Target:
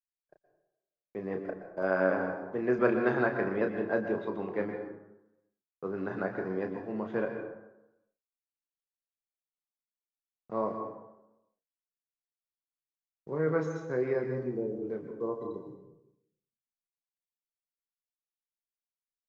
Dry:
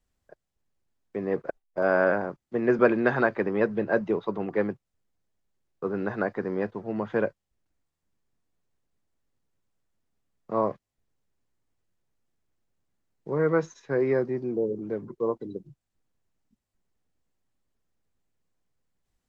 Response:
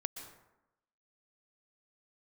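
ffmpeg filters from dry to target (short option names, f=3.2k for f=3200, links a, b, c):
-filter_complex "[0:a]agate=range=-33dB:threshold=-45dB:ratio=3:detection=peak,asplit=2[a][b];[b]adelay=32,volume=-7dB[c];[a][c]amix=inputs=2:normalize=0[d];[1:a]atrim=start_sample=2205[e];[d][e]afir=irnorm=-1:irlink=0,volume=-5.5dB"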